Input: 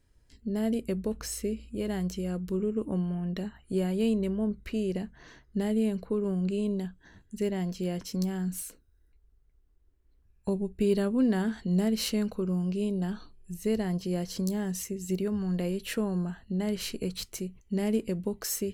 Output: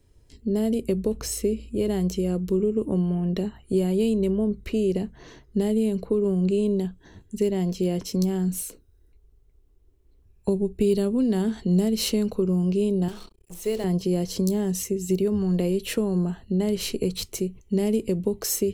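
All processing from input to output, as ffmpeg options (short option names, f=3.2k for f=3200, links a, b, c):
-filter_complex "[0:a]asettb=1/sr,asplit=3[a][b][c];[a]atrim=end=13.084[d];[b]atrim=start=13.08:end=13.84,asetpts=PTS-STARTPTS,afade=t=in:d=0.004:c=qsin,afade=t=out:st=0.756:d=0.004:c=qsin,equalizer=f=130:t=o:w=2.8:g=-14,bandreject=f=50:t=h:w=6,bandreject=f=100:t=h:w=6,bandreject=f=150:t=h:w=6,bandreject=f=200:t=h:w=6,bandreject=f=250:t=h:w=6,bandreject=f=300:t=h:w=6,bandreject=f=350:t=h:w=6,bandreject=f=400:t=h:w=6,bandreject=f=450:t=h:w=6,acrusher=bits=7:mix=0:aa=0.5[e];[c]atrim=start=13.836[f];[d][e]acrossfade=d=0.004:c1=hsin:c2=qsin[g];[g][f]acrossfade=d=0.004:c1=qsin:c2=hsin,bandreject=f=4.7k:w=24,acrossover=split=180|3000[h][i][j];[i]acompressor=threshold=-31dB:ratio=6[k];[h][k][j]amix=inputs=3:normalize=0,equalizer=f=100:t=o:w=0.67:g=4,equalizer=f=400:t=o:w=0.67:g=6,equalizer=f=1.6k:t=o:w=0.67:g=-7,volume=6dB"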